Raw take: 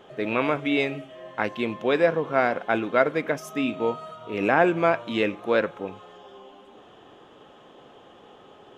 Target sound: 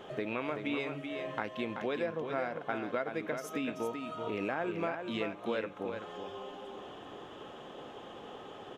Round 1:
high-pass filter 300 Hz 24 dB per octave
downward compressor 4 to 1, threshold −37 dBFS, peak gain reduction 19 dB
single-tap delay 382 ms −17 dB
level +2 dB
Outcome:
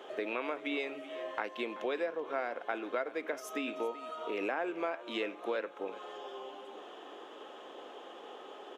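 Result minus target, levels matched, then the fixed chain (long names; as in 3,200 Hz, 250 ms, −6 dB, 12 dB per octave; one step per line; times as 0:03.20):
echo-to-direct −10.5 dB; 250 Hz band −3.5 dB
downward compressor 4 to 1, threshold −37 dBFS, peak gain reduction 19 dB
single-tap delay 382 ms −6.5 dB
level +2 dB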